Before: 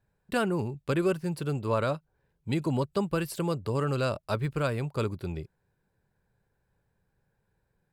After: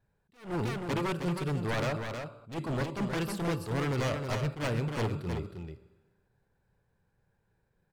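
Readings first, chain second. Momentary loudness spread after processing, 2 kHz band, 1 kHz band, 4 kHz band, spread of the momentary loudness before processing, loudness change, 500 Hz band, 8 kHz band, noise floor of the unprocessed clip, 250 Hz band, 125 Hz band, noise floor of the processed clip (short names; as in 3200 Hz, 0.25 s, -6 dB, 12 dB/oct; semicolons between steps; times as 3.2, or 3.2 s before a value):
10 LU, 0.0 dB, -2.5 dB, +0.5 dB, 8 LU, -3.0 dB, -4.5 dB, -0.5 dB, -77 dBFS, -3.0 dB, -1.5 dB, -75 dBFS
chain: high shelf 6900 Hz -6.5 dB; Schroeder reverb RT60 1.2 s, combs from 27 ms, DRR 14 dB; wavefolder -26 dBFS; on a send: echo 0.315 s -6.5 dB; on the sum: attack slew limiter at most 170 dB/s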